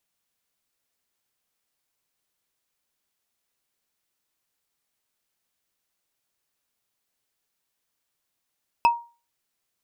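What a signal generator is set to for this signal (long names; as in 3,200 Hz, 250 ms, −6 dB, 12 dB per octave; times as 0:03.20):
struck wood bar, lowest mode 941 Hz, decay 0.33 s, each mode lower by 8 dB, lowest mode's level −11 dB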